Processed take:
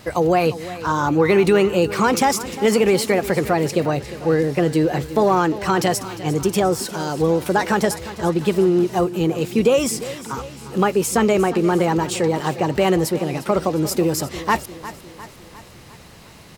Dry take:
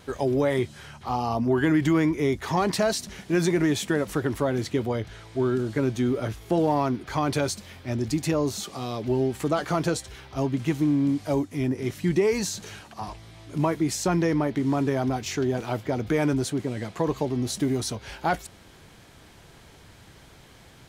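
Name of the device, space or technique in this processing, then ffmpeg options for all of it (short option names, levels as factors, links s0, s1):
nightcore: -af "aecho=1:1:444|888|1332|1776|2220:0.178|0.096|0.0519|0.028|0.0151,asetrate=55566,aresample=44100,volume=2.11"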